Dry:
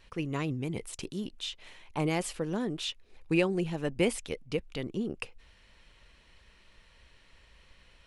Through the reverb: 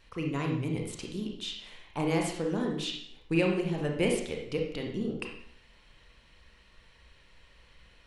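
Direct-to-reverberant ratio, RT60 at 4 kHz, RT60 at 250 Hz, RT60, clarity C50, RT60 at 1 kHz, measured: 1.0 dB, 0.60 s, 0.70 s, 0.70 s, 4.0 dB, 0.70 s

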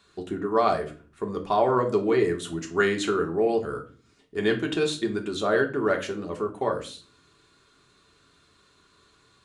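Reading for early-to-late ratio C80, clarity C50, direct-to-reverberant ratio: 18.0 dB, 12.5 dB, 2.0 dB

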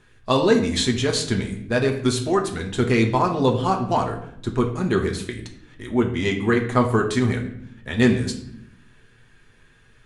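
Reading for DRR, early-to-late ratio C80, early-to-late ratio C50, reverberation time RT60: 1.0 dB, 12.0 dB, 9.0 dB, 0.70 s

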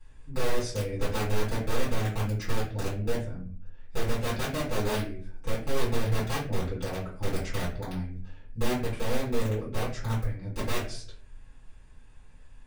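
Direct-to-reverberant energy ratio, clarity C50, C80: -11.5 dB, 6.0 dB, 11.0 dB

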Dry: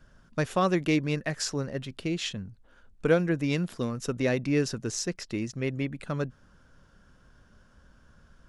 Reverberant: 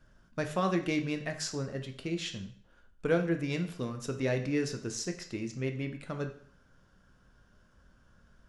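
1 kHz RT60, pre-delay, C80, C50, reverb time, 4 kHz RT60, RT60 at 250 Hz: 0.55 s, 10 ms, 14.0 dB, 10.5 dB, 0.55 s, 0.55 s, 0.55 s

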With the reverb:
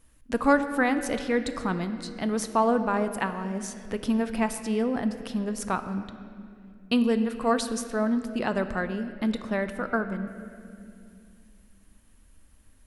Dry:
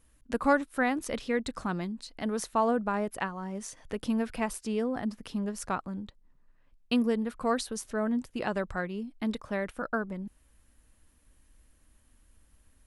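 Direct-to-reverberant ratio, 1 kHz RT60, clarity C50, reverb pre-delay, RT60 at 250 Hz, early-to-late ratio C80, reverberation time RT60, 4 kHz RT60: 9.0 dB, 2.1 s, 10.0 dB, 3 ms, 3.6 s, 11.0 dB, 2.4 s, 1.8 s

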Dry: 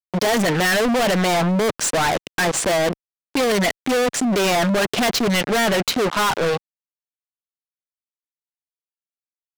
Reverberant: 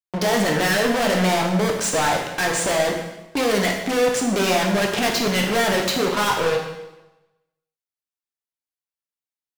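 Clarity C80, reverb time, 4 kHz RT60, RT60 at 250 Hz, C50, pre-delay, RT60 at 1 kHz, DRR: 7.0 dB, 1.0 s, 0.90 s, 1.0 s, 4.5 dB, 6 ms, 1.0 s, 0.5 dB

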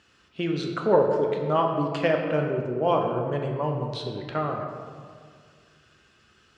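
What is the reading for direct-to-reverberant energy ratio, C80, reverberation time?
1.5 dB, 5.0 dB, 2.0 s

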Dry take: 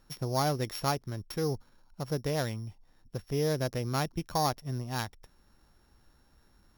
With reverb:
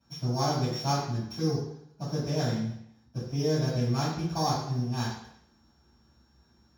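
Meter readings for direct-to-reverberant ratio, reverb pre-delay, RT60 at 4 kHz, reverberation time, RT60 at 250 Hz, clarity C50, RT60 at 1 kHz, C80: -11.5 dB, 3 ms, 0.70 s, 0.70 s, 0.75 s, 1.5 dB, 0.70 s, 4.5 dB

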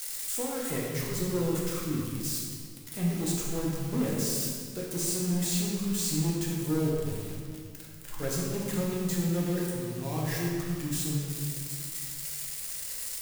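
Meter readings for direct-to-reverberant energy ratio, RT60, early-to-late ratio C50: -4.5 dB, 2.0 s, -0.5 dB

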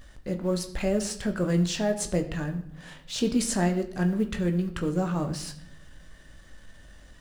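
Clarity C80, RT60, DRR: 15.0 dB, 0.70 s, 5.5 dB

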